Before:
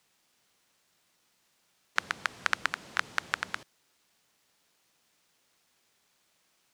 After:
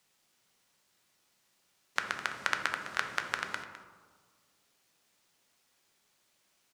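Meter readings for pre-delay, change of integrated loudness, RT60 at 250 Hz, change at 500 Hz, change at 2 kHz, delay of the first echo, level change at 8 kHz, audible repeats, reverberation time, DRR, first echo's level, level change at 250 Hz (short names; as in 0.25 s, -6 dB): 3 ms, -1.5 dB, 1.8 s, +1.5 dB, -1.5 dB, 0.207 s, -1.0 dB, 1, 1.6 s, 4.5 dB, -13.5 dB, 0.0 dB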